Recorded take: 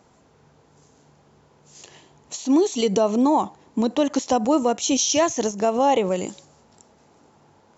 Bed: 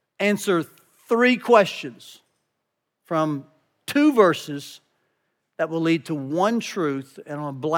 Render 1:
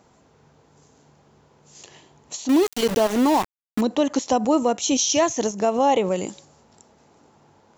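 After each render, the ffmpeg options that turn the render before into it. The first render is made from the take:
ffmpeg -i in.wav -filter_complex "[0:a]asettb=1/sr,asplit=3[link_01][link_02][link_03];[link_01]atrim=end=2.494[link_04];[link_02]atrim=start=2.49:end=3.81,asetpts=PTS-STARTPTS,afade=type=in:duration=0.004:curve=qsin,afade=type=out:start_time=1.316:duration=0.004:curve=qsin,aeval=exprs='val(0)*gte(abs(val(0)),0.0708)':channel_layout=same[link_05];[link_03]atrim=start=3.806[link_06];[link_04][link_05]acrossfade=duration=0.004:curve1=hsin:curve2=qsin[link_07];[link_07][link_06]acrossfade=duration=0.004:curve1=qsin:curve2=hsin" out.wav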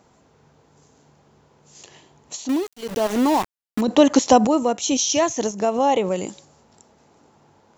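ffmpeg -i in.wav -filter_complex "[0:a]asplit=5[link_01][link_02][link_03][link_04][link_05];[link_01]atrim=end=2.75,asetpts=PTS-STARTPTS,afade=type=out:start_time=2.41:duration=0.34:silence=0.0707946[link_06];[link_02]atrim=start=2.75:end=2.76,asetpts=PTS-STARTPTS,volume=-23dB[link_07];[link_03]atrim=start=2.76:end=3.882,asetpts=PTS-STARTPTS,afade=type=in:duration=0.34:silence=0.0707946[link_08];[link_04]atrim=start=3.878:end=4.472,asetpts=PTS-STARTPTS,volume=7dB[link_09];[link_05]atrim=start=4.468[link_10];[link_06][link_07][link_08]concat=n=3:v=0:a=1[link_11];[link_11][link_09]acrossfade=duration=0.004:curve1=hsin:curve2=hsin[link_12];[link_12][link_10]acrossfade=duration=0.004:curve1=hsin:curve2=hsin" out.wav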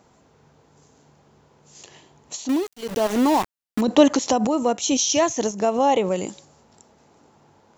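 ffmpeg -i in.wav -filter_complex "[0:a]asettb=1/sr,asplit=3[link_01][link_02][link_03];[link_01]atrim=end=4.154[link_04];[link_02]atrim=start=4.15:end=4.66,asetpts=PTS-STARTPTS,afade=type=in:duration=0.004:curve=qsin,afade=type=out:start_time=0.506:duration=0.004:curve=qsin,acompressor=threshold=-18dB:ratio=2.5:attack=3.2:release=140:knee=1:detection=peak[link_05];[link_03]atrim=start=4.656[link_06];[link_04][link_05]acrossfade=duration=0.004:curve1=hsin:curve2=qsin[link_07];[link_07][link_06]acrossfade=duration=0.004:curve1=qsin:curve2=hsin" out.wav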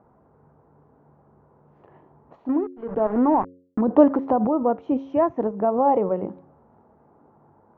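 ffmpeg -i in.wav -af "lowpass=frequency=1300:width=0.5412,lowpass=frequency=1300:width=1.3066,bandreject=frequency=90.6:width_type=h:width=4,bandreject=frequency=181.2:width_type=h:width=4,bandreject=frequency=271.8:width_type=h:width=4,bandreject=frequency=362.4:width_type=h:width=4,bandreject=frequency=453:width_type=h:width=4,bandreject=frequency=543.6:width_type=h:width=4" out.wav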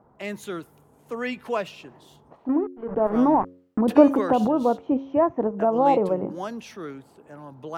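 ffmpeg -i in.wav -i bed.wav -filter_complex "[1:a]volume=-12dB[link_01];[0:a][link_01]amix=inputs=2:normalize=0" out.wav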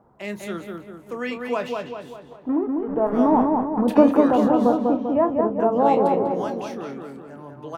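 ffmpeg -i in.wav -filter_complex "[0:a]asplit=2[link_01][link_02];[link_02]adelay=29,volume=-11dB[link_03];[link_01][link_03]amix=inputs=2:normalize=0,asplit=2[link_04][link_05];[link_05]adelay=197,lowpass=frequency=2200:poles=1,volume=-3dB,asplit=2[link_06][link_07];[link_07]adelay=197,lowpass=frequency=2200:poles=1,volume=0.53,asplit=2[link_08][link_09];[link_09]adelay=197,lowpass=frequency=2200:poles=1,volume=0.53,asplit=2[link_10][link_11];[link_11]adelay=197,lowpass=frequency=2200:poles=1,volume=0.53,asplit=2[link_12][link_13];[link_13]adelay=197,lowpass=frequency=2200:poles=1,volume=0.53,asplit=2[link_14][link_15];[link_15]adelay=197,lowpass=frequency=2200:poles=1,volume=0.53,asplit=2[link_16][link_17];[link_17]adelay=197,lowpass=frequency=2200:poles=1,volume=0.53[link_18];[link_04][link_06][link_08][link_10][link_12][link_14][link_16][link_18]amix=inputs=8:normalize=0" out.wav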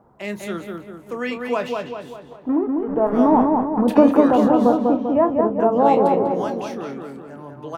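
ffmpeg -i in.wav -af "volume=2.5dB,alimiter=limit=-2dB:level=0:latency=1" out.wav

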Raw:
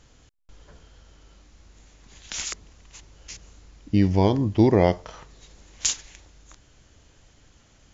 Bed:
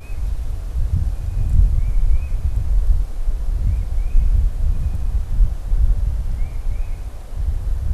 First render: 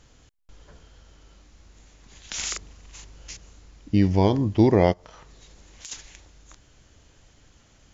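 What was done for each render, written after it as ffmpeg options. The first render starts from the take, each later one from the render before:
ffmpeg -i in.wav -filter_complex "[0:a]asettb=1/sr,asplit=3[link_01][link_02][link_03];[link_01]atrim=end=2.394[link_04];[link_02]atrim=start=2.39:end=3.32,asetpts=PTS-STARTPTS,afade=type=in:duration=0.004:curve=qsin,afade=type=out:start_time=0.926:duration=0.004:curve=qsin,asplit=2[link_05][link_06];[link_06]adelay=41,volume=-2dB[link_07];[link_05][link_07]amix=inputs=2:normalize=0,atrim=end_sample=41013[link_08];[link_03]atrim=start=3.316[link_09];[link_04][link_08]acrossfade=duration=0.004:curve1=hsin:curve2=qsin[link_10];[link_10][link_09]acrossfade=duration=0.004:curve1=qsin:curve2=hsin,asplit=3[link_11][link_12][link_13];[link_11]afade=type=out:start_time=4.92:duration=0.02[link_14];[link_12]acompressor=threshold=-44dB:ratio=3:attack=3.2:release=140:knee=1:detection=peak,afade=type=in:start_time=4.92:duration=0.02,afade=type=out:start_time=5.91:duration=0.02[link_15];[link_13]afade=type=in:start_time=5.91:duration=0.02[link_16];[link_14][link_15][link_16]amix=inputs=3:normalize=0" out.wav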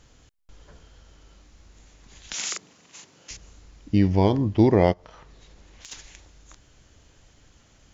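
ffmpeg -i in.wav -filter_complex "[0:a]asettb=1/sr,asplit=3[link_01][link_02][link_03];[link_01]atrim=end=2.334[link_04];[link_02]atrim=start=2.33:end=3.31,asetpts=PTS-STARTPTS,afade=type=in:duration=0.004:curve=qsin,afade=type=out:start_time=0.976:duration=0.004:curve=qsin,highpass=frequency=150:width=0.5412,highpass=frequency=150:width=1.3066[link_05];[link_03]atrim=start=3.306[link_06];[link_04][link_05]acrossfade=duration=0.004:curve1=hsin:curve2=qsin[link_07];[link_07][link_06]acrossfade=duration=0.004:curve1=qsin:curve2=hsin,asettb=1/sr,asplit=3[link_08][link_09][link_10];[link_08]atrim=end=3.984[link_11];[link_09]atrim=start=3.98:end=5.97,asetpts=PTS-STARTPTS,afade=type=in:duration=0.004:curve=qsin,afade=type=out:start_time=1.986:duration=0.004:curve=qsin,adynamicsmooth=sensitivity=1.5:basefreq=6400[link_12];[link_10]atrim=start=5.966[link_13];[link_11][link_12]acrossfade=duration=0.004:curve1=hsin:curve2=qsin[link_14];[link_14][link_13]acrossfade=duration=0.004:curve1=qsin:curve2=hsin" out.wav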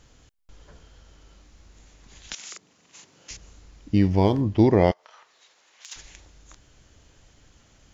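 ffmpeg -i in.wav -filter_complex "[0:a]asettb=1/sr,asplit=3[link_01][link_02][link_03];[link_01]atrim=end=3.964[link_04];[link_02]atrim=start=3.96:end=4.41,asetpts=PTS-STARTPTS,afade=type=in:duration=0.004:curve=qsin,afade=type=out:start_time=0.446:duration=0.004:curve=qsin,aeval=exprs='sgn(val(0))*max(abs(val(0))-0.00282,0)':channel_layout=same[link_05];[link_03]atrim=start=4.406[link_06];[link_04][link_05]acrossfade=duration=0.004:curve1=hsin:curve2=qsin[link_07];[link_07][link_06]acrossfade=duration=0.004:curve1=qsin:curve2=hsin,asettb=1/sr,asplit=3[link_08][link_09][link_10];[link_08]atrim=end=4.914[link_11];[link_09]atrim=start=4.91:end=5.96,asetpts=PTS-STARTPTS,afade=type=in:duration=0.004:curve=qsin,afade=type=out:start_time=1.046:duration=0.004:curve=qsin,highpass=840[link_12];[link_10]atrim=start=5.956[link_13];[link_11][link_12]acrossfade=duration=0.004:curve1=hsin:curve2=qsin[link_14];[link_14][link_13]acrossfade=duration=0.004:curve1=qsin:curve2=hsin,asplit=2[link_15][link_16];[link_15]atrim=end=2.35,asetpts=PTS-STARTPTS,afade=type=out:start_time=2.346:duration=0.004:curve=hsin:silence=0.199526[link_17];[link_16]atrim=start=2.35,asetpts=PTS-STARTPTS,afade=type=in:duration=0.98:silence=0.199526[link_18];[link_17][link_18]concat=n=2:v=0:a=1" out.wav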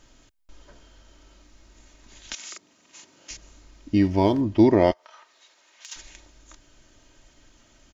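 ffmpeg -i in.wav -af "equalizer=frequency=68:width_type=o:width=0.6:gain=-14.5,aecho=1:1:3.2:0.5" out.wav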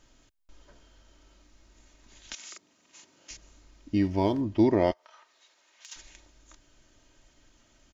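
ffmpeg -i in.wav -af "volume=-5.5dB" out.wav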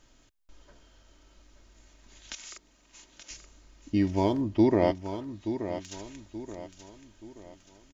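ffmpeg -i in.wav -af "aecho=1:1:878|1756|2634|3512:0.316|0.126|0.0506|0.0202" out.wav

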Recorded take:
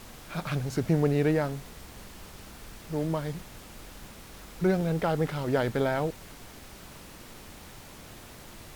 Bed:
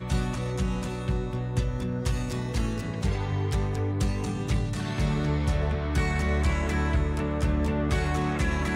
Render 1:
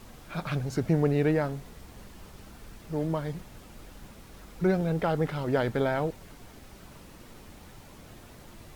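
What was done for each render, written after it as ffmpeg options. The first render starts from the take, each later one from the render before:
ffmpeg -i in.wav -af "afftdn=noise_reduction=6:noise_floor=-48" out.wav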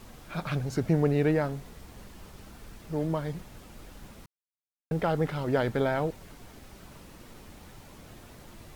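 ffmpeg -i in.wav -filter_complex "[0:a]asplit=3[link_01][link_02][link_03];[link_01]atrim=end=4.26,asetpts=PTS-STARTPTS,afade=type=out:start_time=4.256:duration=0.004:curve=hsin[link_04];[link_02]atrim=start=4.26:end=4.91,asetpts=PTS-STARTPTS,volume=0[link_05];[link_03]atrim=start=4.91,asetpts=PTS-STARTPTS,afade=type=in:duration=0.004:curve=hsin[link_06];[link_04][link_05][link_06]concat=n=3:v=0:a=1" out.wav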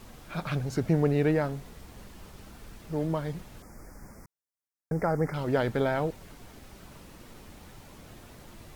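ffmpeg -i in.wav -filter_complex "[0:a]asettb=1/sr,asplit=3[link_01][link_02][link_03];[link_01]atrim=end=3.624[link_04];[link_02]atrim=start=3.62:end=5.34,asetpts=PTS-STARTPTS,afade=type=in:duration=0.004:curve=qsin,afade=type=out:start_time=1.716:duration=0.004:curve=qsin,asuperstop=centerf=3300:order=8:qfactor=1.2[link_05];[link_03]atrim=start=5.336[link_06];[link_04][link_05]acrossfade=duration=0.004:curve1=hsin:curve2=qsin[link_07];[link_07][link_06]acrossfade=duration=0.004:curve1=qsin:curve2=hsin" out.wav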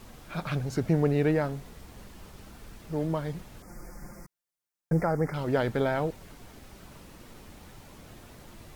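ffmpeg -i in.wav -filter_complex "[0:a]asettb=1/sr,asplit=3[link_01][link_02][link_03];[link_01]atrim=end=3.674[link_04];[link_02]atrim=start=3.67:end=5.04,asetpts=PTS-STARTPTS,afade=type=in:duration=0.004:curve=qsin,afade=type=out:start_time=1.366:duration=0.004:curve=qsin,aecho=1:1:5.7:0.97,atrim=end_sample=60417[link_05];[link_03]atrim=start=5.036[link_06];[link_04][link_05]acrossfade=duration=0.004:curve1=hsin:curve2=qsin[link_07];[link_07][link_06]acrossfade=duration=0.004:curve1=qsin:curve2=hsin" out.wav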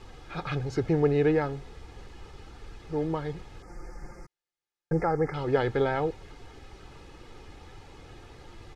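ffmpeg -i in.wav -af "lowpass=5200,aecho=1:1:2.4:0.56" out.wav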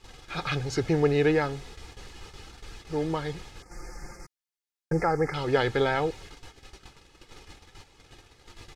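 ffmpeg -i in.wav -af "agate=range=-12dB:threshold=-45dB:ratio=16:detection=peak,highshelf=frequency=2000:gain=11.5" out.wav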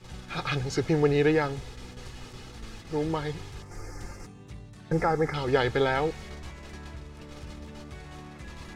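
ffmpeg -i in.wav -i bed.wav -filter_complex "[1:a]volume=-17.5dB[link_01];[0:a][link_01]amix=inputs=2:normalize=0" out.wav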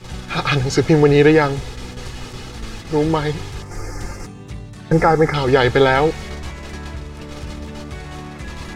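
ffmpeg -i in.wav -af "volume=11.5dB,alimiter=limit=-2dB:level=0:latency=1" out.wav

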